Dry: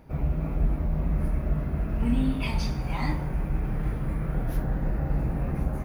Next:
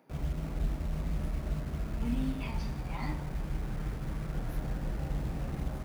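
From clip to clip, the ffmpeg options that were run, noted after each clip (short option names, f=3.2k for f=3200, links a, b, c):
-filter_complex "[0:a]acrossover=split=190|2300[a][b][c];[a]acrusher=bits=6:mix=0:aa=0.000001[d];[c]alimiter=level_in=11.5dB:limit=-24dB:level=0:latency=1:release=499,volume=-11.5dB[e];[d][b][e]amix=inputs=3:normalize=0,volume=-7.5dB"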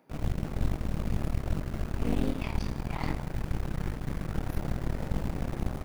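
-af "aeval=exprs='0.1*(cos(1*acos(clip(val(0)/0.1,-1,1)))-cos(1*PI/2))+0.0447*(cos(4*acos(clip(val(0)/0.1,-1,1)))-cos(4*PI/2))':c=same"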